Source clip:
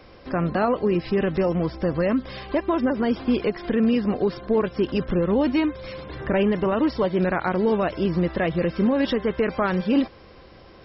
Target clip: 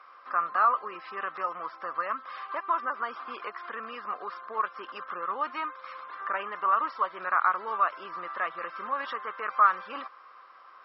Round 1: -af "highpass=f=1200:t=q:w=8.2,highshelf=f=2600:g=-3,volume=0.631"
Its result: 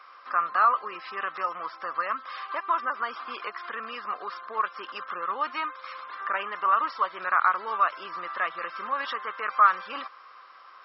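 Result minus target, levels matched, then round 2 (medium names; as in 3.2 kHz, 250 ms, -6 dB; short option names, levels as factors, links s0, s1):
4 kHz band +4.5 dB
-af "highpass=f=1200:t=q:w=8.2,highshelf=f=2600:g=-14,volume=0.631"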